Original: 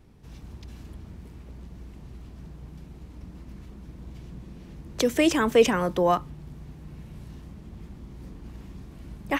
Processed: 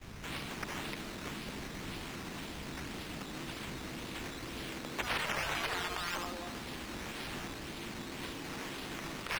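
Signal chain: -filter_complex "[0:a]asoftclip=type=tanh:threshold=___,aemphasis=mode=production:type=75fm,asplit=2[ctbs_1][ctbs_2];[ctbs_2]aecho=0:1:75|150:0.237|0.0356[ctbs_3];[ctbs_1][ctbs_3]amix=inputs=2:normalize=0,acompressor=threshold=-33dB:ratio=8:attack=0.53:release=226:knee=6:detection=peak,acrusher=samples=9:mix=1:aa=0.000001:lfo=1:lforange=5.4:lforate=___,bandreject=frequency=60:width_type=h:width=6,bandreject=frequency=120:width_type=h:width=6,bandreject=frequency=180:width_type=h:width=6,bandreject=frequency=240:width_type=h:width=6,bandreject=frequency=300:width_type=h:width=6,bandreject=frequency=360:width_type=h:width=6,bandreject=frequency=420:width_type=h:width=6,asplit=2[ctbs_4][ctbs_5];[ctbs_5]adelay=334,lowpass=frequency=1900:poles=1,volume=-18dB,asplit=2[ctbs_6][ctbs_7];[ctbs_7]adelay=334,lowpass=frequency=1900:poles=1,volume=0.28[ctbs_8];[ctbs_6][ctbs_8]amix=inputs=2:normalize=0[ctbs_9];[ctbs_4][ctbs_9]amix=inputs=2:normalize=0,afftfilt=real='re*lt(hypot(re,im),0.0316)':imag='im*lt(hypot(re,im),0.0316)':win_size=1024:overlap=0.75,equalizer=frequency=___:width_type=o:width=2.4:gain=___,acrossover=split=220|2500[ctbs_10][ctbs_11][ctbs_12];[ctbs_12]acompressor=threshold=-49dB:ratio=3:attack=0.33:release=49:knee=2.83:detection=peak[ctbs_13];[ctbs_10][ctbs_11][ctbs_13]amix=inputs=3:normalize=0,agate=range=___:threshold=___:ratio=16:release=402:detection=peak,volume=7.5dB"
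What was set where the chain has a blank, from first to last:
-21.5dB, 1.9, 3800, 6.5, -16dB, -57dB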